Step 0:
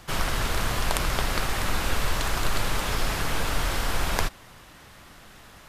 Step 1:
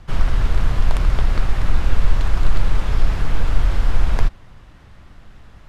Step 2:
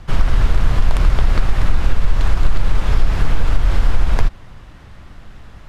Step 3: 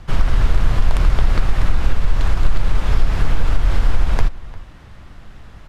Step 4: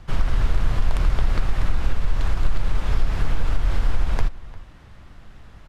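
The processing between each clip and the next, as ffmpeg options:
ffmpeg -i in.wav -af "aemphasis=mode=reproduction:type=bsi,volume=-2.5dB" out.wav
ffmpeg -i in.wav -af "acompressor=threshold=-11dB:ratio=6,volume=5dB" out.wav
ffmpeg -i in.wav -filter_complex "[0:a]asplit=2[link_01][link_02];[link_02]adelay=349.9,volume=-19dB,highshelf=frequency=4000:gain=-7.87[link_03];[link_01][link_03]amix=inputs=2:normalize=0,volume=-1dB" out.wav
ffmpeg -i in.wav -af "aresample=32000,aresample=44100,volume=-5dB" out.wav

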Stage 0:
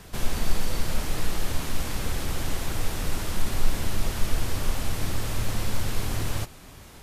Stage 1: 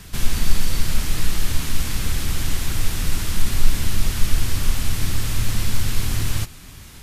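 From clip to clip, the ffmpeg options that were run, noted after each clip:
ffmpeg -i in.wav -af "equalizer=frequency=600:width_type=o:width=2:gain=-11,volume=7dB" out.wav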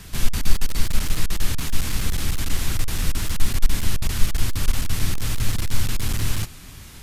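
ffmpeg -i in.wav -af "aeval=exprs='clip(val(0),-1,0.141)':channel_layout=same" out.wav

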